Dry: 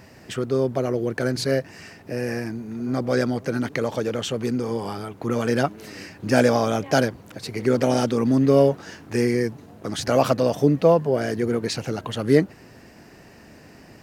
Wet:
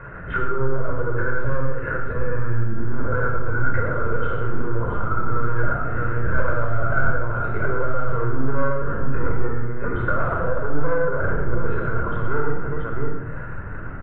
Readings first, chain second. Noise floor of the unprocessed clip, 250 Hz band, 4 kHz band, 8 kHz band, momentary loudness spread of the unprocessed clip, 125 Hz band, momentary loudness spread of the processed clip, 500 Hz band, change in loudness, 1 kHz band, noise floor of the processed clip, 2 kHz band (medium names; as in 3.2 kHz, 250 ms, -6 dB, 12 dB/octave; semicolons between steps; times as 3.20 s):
-48 dBFS, -8.0 dB, under -20 dB, under -40 dB, 14 LU, +3.0 dB, 5 LU, -5.0 dB, -2.5 dB, +2.5 dB, -30 dBFS, +5.5 dB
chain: multi-tap echo 54/68/113/374/678 ms -8.5/-12/-4.5/-17/-9 dB; LPC vocoder at 8 kHz pitch kept; saturation -18 dBFS, distortion -7 dB; compression 10:1, threshold -32 dBFS, peak gain reduction 12.5 dB; resonant low-pass 1.4 kHz, resonance Q 15; bass shelf 200 Hz +6 dB; simulated room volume 2900 m³, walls furnished, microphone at 5.1 m